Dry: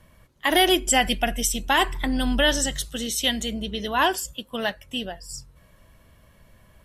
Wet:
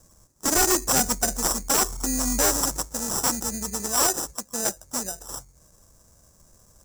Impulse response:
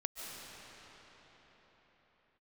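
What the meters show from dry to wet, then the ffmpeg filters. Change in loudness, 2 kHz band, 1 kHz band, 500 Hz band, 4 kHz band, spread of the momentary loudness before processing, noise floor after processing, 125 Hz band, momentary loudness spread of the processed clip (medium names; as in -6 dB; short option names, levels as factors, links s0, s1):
0.0 dB, -7.5 dB, -4.0 dB, -3.5 dB, -6.0 dB, 12 LU, -58 dBFS, -2.0 dB, 10 LU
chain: -af "acrusher=samples=20:mix=1:aa=0.000001,highshelf=f=4600:t=q:w=3:g=14,aeval=exprs='0.422*(abs(mod(val(0)/0.422+3,4)-2)-1)':c=same,volume=0.631"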